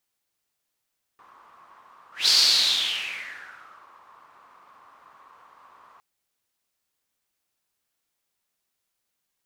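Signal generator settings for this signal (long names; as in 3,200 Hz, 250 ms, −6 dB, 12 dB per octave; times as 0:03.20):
pass-by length 4.81 s, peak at 0:01.10, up 0.19 s, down 1.76 s, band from 1,100 Hz, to 4,600 Hz, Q 6, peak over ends 35 dB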